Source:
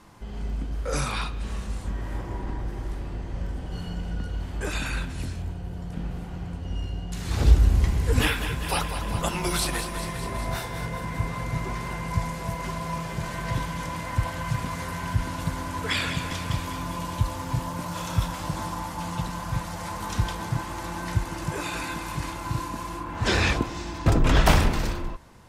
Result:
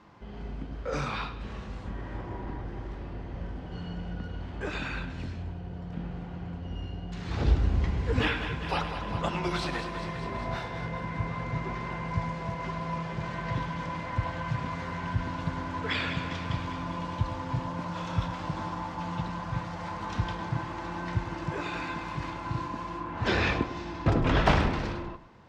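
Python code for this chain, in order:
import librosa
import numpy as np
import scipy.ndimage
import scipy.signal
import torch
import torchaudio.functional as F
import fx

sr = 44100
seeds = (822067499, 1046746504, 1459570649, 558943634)

p1 = fx.highpass(x, sr, hz=100.0, slope=6)
p2 = fx.air_absorb(p1, sr, metres=180.0)
p3 = p2 + fx.echo_single(p2, sr, ms=104, db=-13.0, dry=0)
y = p3 * 10.0 ** (-1.5 / 20.0)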